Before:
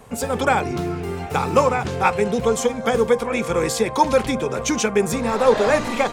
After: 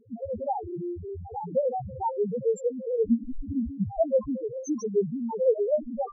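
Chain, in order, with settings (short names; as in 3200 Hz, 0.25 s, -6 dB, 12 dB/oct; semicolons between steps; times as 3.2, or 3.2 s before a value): 3.06–4.05 frequency shift -250 Hz; loudest bins only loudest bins 1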